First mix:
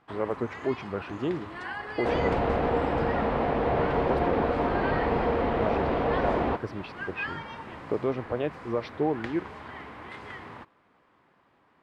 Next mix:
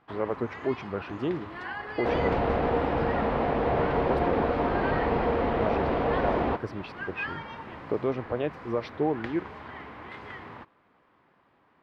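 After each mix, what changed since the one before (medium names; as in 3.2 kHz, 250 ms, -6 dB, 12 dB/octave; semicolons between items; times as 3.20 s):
first sound: add peaking EQ 8.6 kHz -10.5 dB 1 oct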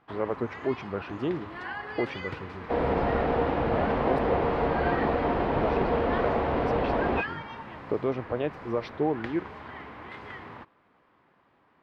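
second sound: entry +0.65 s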